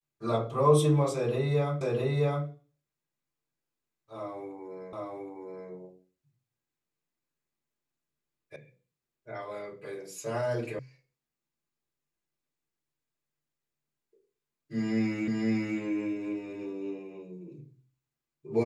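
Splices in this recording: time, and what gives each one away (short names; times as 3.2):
1.81 repeat of the last 0.66 s
4.93 repeat of the last 0.77 s
8.56 sound cut off
10.79 sound cut off
15.28 repeat of the last 0.51 s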